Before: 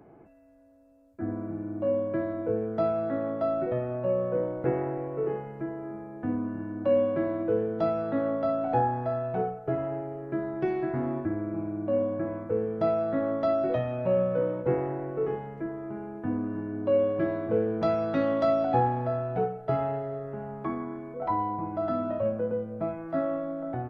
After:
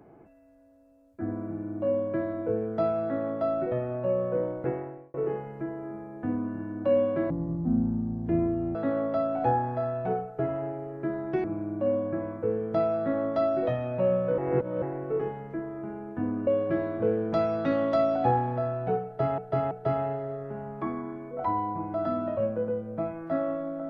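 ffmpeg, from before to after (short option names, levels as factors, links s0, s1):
-filter_complex "[0:a]asplit=10[s0][s1][s2][s3][s4][s5][s6][s7][s8][s9];[s0]atrim=end=5.14,asetpts=PTS-STARTPTS,afade=t=out:st=4.5:d=0.64[s10];[s1]atrim=start=5.14:end=7.304,asetpts=PTS-STARTPTS,afade=t=in:d=0.004:c=hsin[s11];[s2]atrim=start=7.3:end=8.04,asetpts=PTS-STARTPTS,asetrate=22491,aresample=44100,atrim=end_sample=63988,asetpts=PTS-STARTPTS[s12];[s3]atrim=start=8.036:end=10.732[s13];[s4]atrim=start=11.508:end=14.452[s14];[s5]atrim=start=14.448:end=14.892,asetpts=PTS-STARTPTS,areverse[s15];[s6]atrim=start=14.888:end=16.542[s16];[s7]atrim=start=16.958:end=19.872[s17];[s8]atrim=start=19.538:end=19.872[s18];[s9]atrim=start=19.538[s19];[s10][s11]concat=n=2:v=0:a=1[s20];[s20][s12]acrossfade=d=0.004:c1=hsin:c2=hsin[s21];[s21][s13]acrossfade=d=0.004:c1=hsin:c2=hsin[s22];[s22][s14]acrossfade=d=0.004:c1=hsin:c2=hsin[s23];[s23][s15]acrossfade=d=0.004:c1=hsin:c2=hsin[s24];[s24][s16]acrossfade=d=0.004:c1=hsin:c2=hsin[s25];[s25][s17]acrossfade=d=0.004:c1=hsin:c2=hsin[s26];[s26][s18]acrossfade=d=0.004:c1=hsin:c2=hsin[s27];[s27][s19]acrossfade=d=0.004:c1=hsin:c2=hsin"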